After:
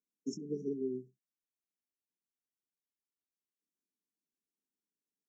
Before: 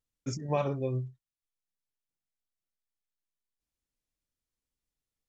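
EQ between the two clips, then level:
Butterworth high-pass 180 Hz 48 dB per octave
linear-phase brick-wall band-stop 470–5,300 Hz
high-shelf EQ 5,000 Hz −11.5 dB
0.0 dB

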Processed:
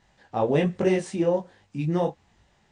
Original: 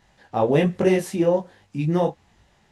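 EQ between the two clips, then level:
linear-phase brick-wall low-pass 9,500 Hz
−3.5 dB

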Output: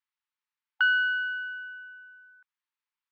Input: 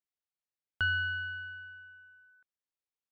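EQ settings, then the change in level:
linear-phase brick-wall high-pass 830 Hz
low-pass filter 3,100 Hz 12 dB per octave
+7.5 dB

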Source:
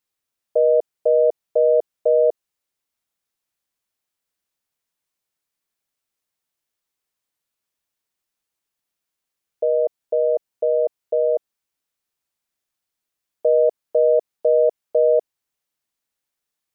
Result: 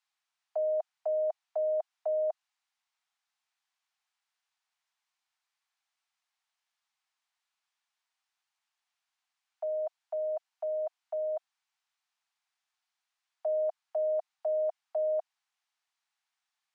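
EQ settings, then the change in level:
Butterworth high-pass 700 Hz 72 dB per octave
high-frequency loss of the air 82 metres
+2.5 dB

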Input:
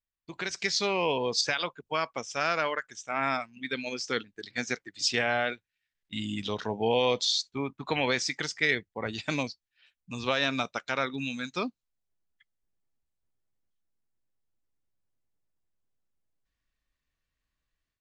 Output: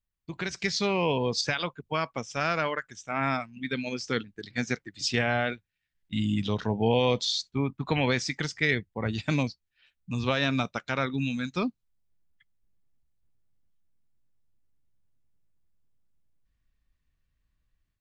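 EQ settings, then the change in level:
bass and treble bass +11 dB, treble −3 dB
0.0 dB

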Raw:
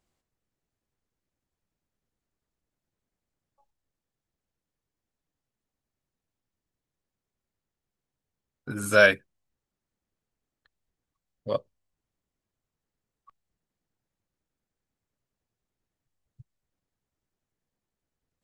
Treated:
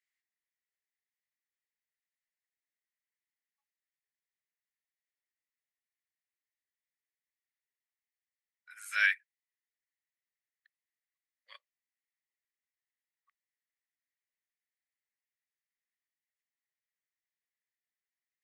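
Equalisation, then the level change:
four-pole ladder high-pass 1,800 Hz, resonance 75%
0.0 dB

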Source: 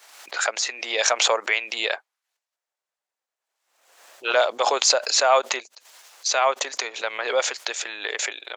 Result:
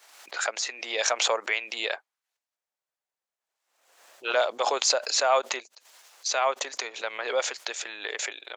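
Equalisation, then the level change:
parametric band 160 Hz +2 dB 2.9 octaves
−5.0 dB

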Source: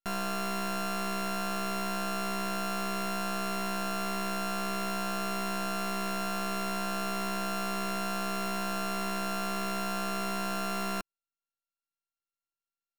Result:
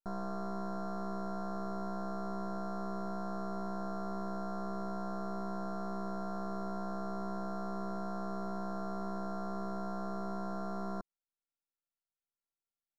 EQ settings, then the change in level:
Butterworth band-reject 2,600 Hz, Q 0.57
high-frequency loss of the air 230 metres
−3.0 dB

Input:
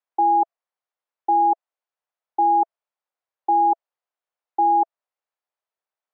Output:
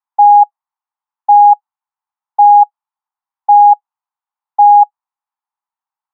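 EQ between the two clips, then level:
parametric band 920 Hz +14.5 dB 2.1 octaves
dynamic equaliser 490 Hz, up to +6 dB, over −20 dBFS, Q 0.82
drawn EQ curve 250 Hz 0 dB, 520 Hz −24 dB, 830 Hz +12 dB, 1,500 Hz +6 dB
−16.5 dB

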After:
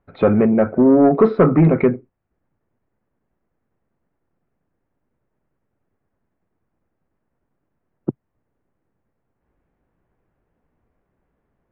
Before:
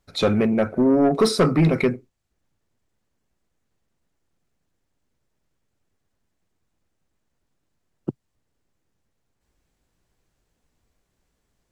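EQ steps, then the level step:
Bessel low-pass filter 1,600 Hz, order 4
high-frequency loss of the air 290 metres
low-shelf EQ 91 Hz −8 dB
+6.5 dB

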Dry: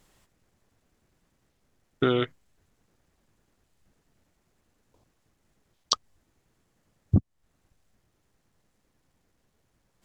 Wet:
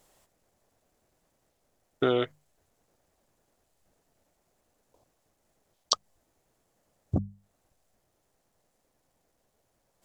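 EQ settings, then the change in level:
parametric band 640 Hz +10.5 dB 1.3 octaves
high-shelf EQ 4,800 Hz +10 dB
mains-hum notches 50/100/150/200 Hz
−6.0 dB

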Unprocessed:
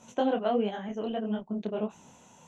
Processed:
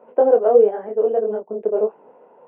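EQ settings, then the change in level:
Gaussian smoothing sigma 5.4 samples
high-pass with resonance 450 Hz, resonance Q 4.9
+5.5 dB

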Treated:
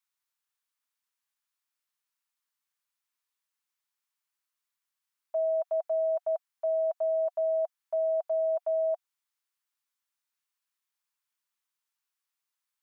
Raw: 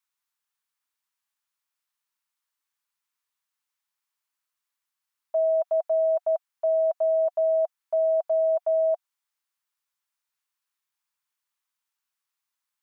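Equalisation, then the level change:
low-shelf EQ 490 Hz −8.5 dB
−2.0 dB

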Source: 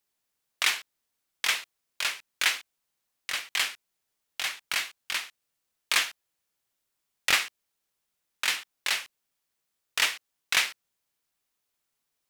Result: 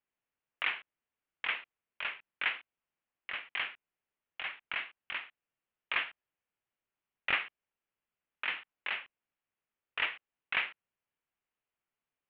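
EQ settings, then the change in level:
Butterworth low-pass 3,000 Hz 48 dB per octave
−5.5 dB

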